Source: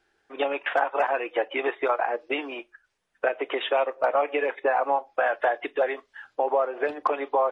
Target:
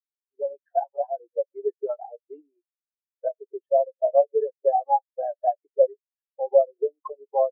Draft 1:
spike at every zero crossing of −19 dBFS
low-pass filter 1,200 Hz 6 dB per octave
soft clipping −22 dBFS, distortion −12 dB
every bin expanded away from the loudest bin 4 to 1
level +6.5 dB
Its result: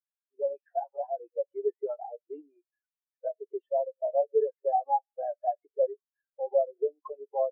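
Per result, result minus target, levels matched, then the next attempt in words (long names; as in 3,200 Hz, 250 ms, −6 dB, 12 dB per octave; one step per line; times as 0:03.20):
soft clipping: distortion +17 dB; spike at every zero crossing: distortion +11 dB
spike at every zero crossing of −19 dBFS
low-pass filter 1,200 Hz 6 dB per octave
soft clipping −10.5 dBFS, distortion −30 dB
every bin expanded away from the loudest bin 4 to 1
level +6.5 dB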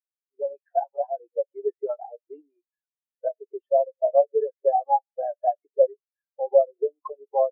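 spike at every zero crossing: distortion +11 dB
spike at every zero crossing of −30 dBFS
low-pass filter 1,200 Hz 6 dB per octave
soft clipping −10.5 dBFS, distortion −30 dB
every bin expanded away from the loudest bin 4 to 1
level +6.5 dB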